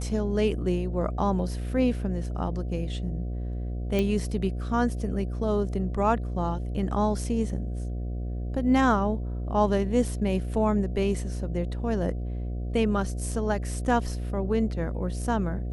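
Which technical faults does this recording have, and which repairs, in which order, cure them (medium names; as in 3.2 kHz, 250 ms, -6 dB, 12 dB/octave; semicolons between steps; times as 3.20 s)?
buzz 60 Hz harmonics 12 -31 dBFS
3.99 s: pop -14 dBFS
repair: de-click; de-hum 60 Hz, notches 12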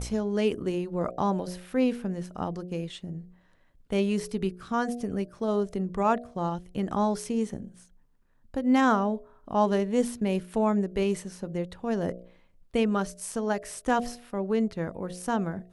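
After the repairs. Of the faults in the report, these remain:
nothing left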